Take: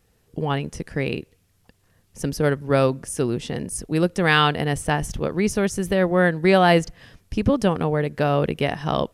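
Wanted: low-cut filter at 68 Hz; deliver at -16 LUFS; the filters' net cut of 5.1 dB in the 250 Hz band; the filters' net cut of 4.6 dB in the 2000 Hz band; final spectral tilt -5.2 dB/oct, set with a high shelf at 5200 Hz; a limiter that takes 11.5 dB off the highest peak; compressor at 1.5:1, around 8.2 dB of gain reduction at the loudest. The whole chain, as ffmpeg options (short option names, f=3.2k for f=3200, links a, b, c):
-af "highpass=68,equalizer=f=250:t=o:g=-8,equalizer=f=2k:t=o:g=-5,highshelf=f=5.2k:g=-7,acompressor=threshold=-37dB:ratio=1.5,volume=21.5dB,alimiter=limit=-4.5dB:level=0:latency=1"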